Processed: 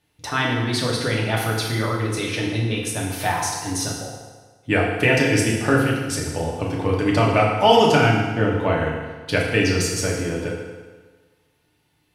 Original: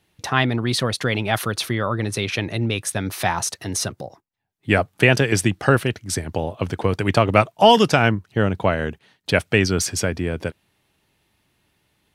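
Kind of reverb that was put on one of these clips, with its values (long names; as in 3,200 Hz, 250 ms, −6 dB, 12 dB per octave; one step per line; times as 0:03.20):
feedback delay network reverb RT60 1.4 s, low-frequency decay 0.9×, high-frequency decay 0.85×, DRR −3.5 dB
level −5.5 dB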